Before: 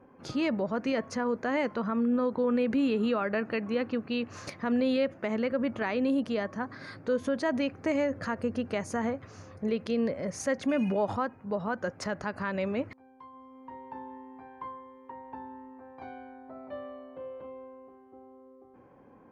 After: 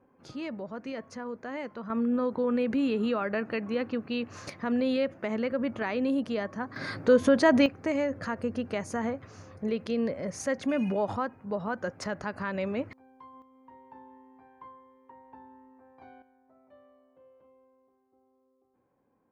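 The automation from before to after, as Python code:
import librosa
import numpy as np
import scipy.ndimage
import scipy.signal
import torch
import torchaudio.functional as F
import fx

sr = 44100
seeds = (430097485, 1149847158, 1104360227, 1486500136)

y = fx.gain(x, sr, db=fx.steps((0.0, -8.0), (1.9, -0.5), (6.76, 8.0), (7.66, -0.5), (13.42, -8.0), (16.22, -17.0)))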